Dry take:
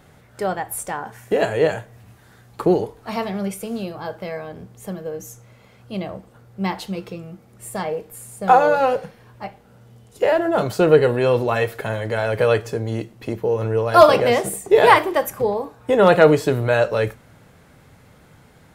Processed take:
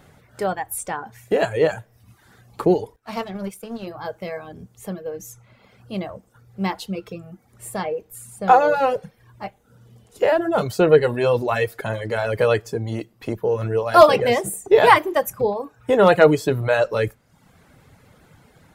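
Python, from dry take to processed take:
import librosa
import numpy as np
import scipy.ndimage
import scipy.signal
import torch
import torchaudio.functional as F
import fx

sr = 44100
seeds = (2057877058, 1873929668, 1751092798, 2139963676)

y = fx.dereverb_blind(x, sr, rt60_s=0.74)
y = fx.power_curve(y, sr, exponent=1.4, at=(2.96, 3.87))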